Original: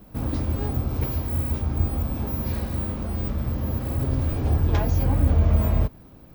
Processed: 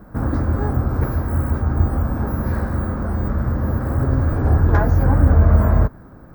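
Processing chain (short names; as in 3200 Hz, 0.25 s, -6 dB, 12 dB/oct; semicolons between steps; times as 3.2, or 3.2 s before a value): resonant high shelf 2100 Hz -10.5 dB, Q 3; gain +6 dB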